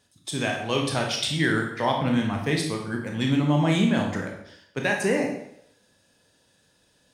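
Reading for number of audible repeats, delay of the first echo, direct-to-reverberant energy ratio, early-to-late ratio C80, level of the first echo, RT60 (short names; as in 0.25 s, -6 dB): none, none, 1.0 dB, 8.0 dB, none, 0.75 s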